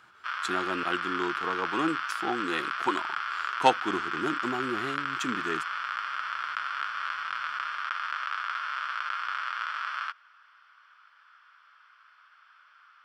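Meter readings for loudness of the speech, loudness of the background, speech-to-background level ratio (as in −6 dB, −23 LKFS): −32.0 LKFS, −32.0 LKFS, 0.0 dB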